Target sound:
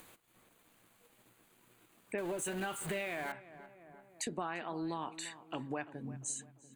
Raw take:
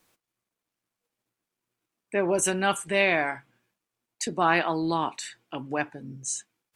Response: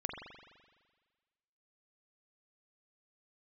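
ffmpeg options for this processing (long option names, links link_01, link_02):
-filter_complex "[0:a]asettb=1/sr,asplit=3[link_01][link_02][link_03];[link_01]atrim=end=2.184[link_04];[link_02]atrim=start=2.18:end=3.32,asetpts=PTS-STARTPTS,afade=type=in:duration=0.004:curve=qsin,afade=type=out:start_time=1.136:duration=0.004:curve=qsin,aeval=exprs='val(0)+0.5*0.0501*sgn(val(0))':channel_layout=same[link_05];[link_03]atrim=start=3.316[link_06];[link_04][link_05]acrossfade=duration=0.004:curve1=hsin:curve2=qsin[link_07];[link_07][link_06]acrossfade=duration=0.004:curve1=qsin:curve2=hsin,equalizer=frequency=5400:width_type=o:width=0.33:gain=-13.5,acompressor=threshold=-31dB:ratio=16,asplit=2[link_08][link_09];[link_09]adelay=344,lowpass=frequency=1500:poles=1,volume=-15dB,asplit=2[link_10][link_11];[link_11]adelay=344,lowpass=frequency=1500:poles=1,volume=0.4,asplit=2[link_12][link_13];[link_13]adelay=344,lowpass=frequency=1500:poles=1,volume=0.4,asplit=2[link_14][link_15];[link_15]adelay=344,lowpass=frequency=1500:poles=1,volume=0.4[link_16];[link_08][link_10][link_12][link_14][link_16]amix=inputs=5:normalize=0,acompressor=mode=upward:threshold=-43dB:ratio=2.5,volume=-3.5dB"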